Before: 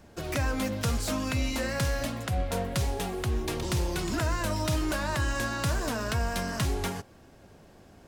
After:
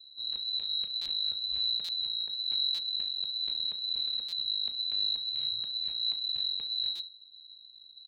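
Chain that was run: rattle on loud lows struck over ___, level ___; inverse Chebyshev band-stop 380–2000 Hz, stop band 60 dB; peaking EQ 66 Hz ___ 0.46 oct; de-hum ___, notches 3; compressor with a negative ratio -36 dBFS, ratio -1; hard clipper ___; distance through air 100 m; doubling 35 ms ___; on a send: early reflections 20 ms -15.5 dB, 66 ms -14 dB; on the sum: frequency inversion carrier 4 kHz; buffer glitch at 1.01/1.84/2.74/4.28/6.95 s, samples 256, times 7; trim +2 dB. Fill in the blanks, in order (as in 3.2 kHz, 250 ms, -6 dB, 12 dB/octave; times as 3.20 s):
-27 dBFS, -32 dBFS, -3 dB, 84.17 Hz, -29.5 dBFS, -11 dB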